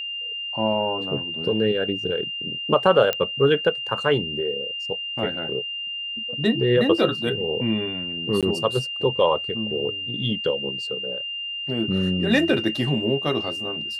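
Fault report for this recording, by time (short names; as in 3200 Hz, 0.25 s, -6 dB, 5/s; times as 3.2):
tone 2800 Hz -28 dBFS
3.13 pop -9 dBFS
8.41–8.43 gap 17 ms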